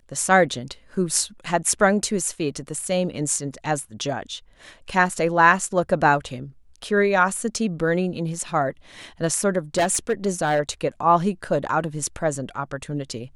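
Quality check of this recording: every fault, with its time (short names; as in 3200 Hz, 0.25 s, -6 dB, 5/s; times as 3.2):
9.77–10.6 clipped -15.5 dBFS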